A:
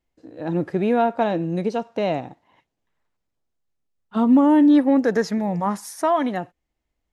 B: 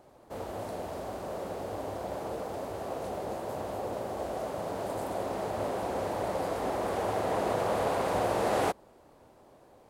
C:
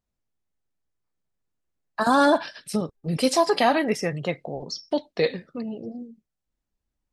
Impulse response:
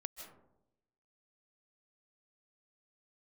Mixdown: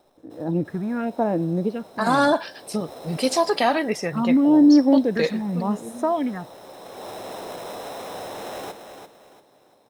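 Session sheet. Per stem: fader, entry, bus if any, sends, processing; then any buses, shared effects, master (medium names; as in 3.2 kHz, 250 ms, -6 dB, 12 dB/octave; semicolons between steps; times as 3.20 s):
-2.0 dB, 0.00 s, no send, no echo send, tilt EQ -1.5 dB/octave; phase shifter stages 4, 0.89 Hz, lowest notch 470–4800 Hz
-2.0 dB, 0.00 s, no send, echo send -8 dB, high-pass 120 Hz; sample-rate reducer 4.6 kHz, jitter 0%; saturation -28.5 dBFS, distortion -12 dB; auto duck -18 dB, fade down 0.75 s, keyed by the first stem
0.0 dB, 0.00 s, no send, no echo send, none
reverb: none
echo: feedback delay 342 ms, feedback 32%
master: bass shelf 110 Hz -6.5 dB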